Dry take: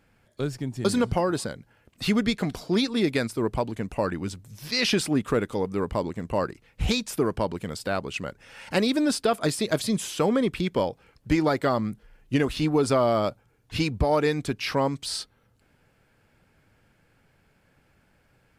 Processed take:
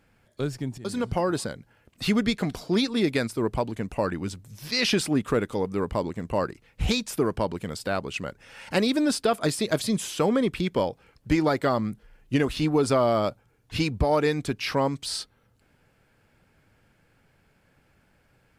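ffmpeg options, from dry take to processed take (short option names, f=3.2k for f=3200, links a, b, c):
-filter_complex "[0:a]asplit=2[a][b];[a]atrim=end=0.78,asetpts=PTS-STARTPTS,afade=t=out:st=0.776:d=0.004:c=hsin:silence=0.223872[c];[b]atrim=start=0.78,asetpts=PTS-STARTPTS,afade=t=in:d=0.5:silence=0.223872[d];[c][d]concat=n=2:v=0:a=1"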